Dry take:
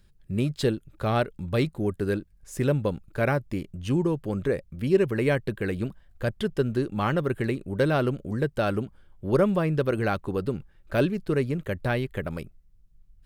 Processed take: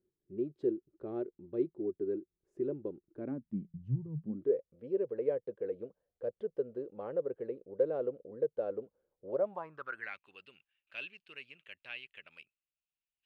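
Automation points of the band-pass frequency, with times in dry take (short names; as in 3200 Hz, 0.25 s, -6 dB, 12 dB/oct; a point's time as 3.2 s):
band-pass, Q 7.6
3.09 s 360 Hz
4.07 s 110 Hz
4.56 s 490 Hz
9.25 s 490 Hz
10.26 s 2700 Hz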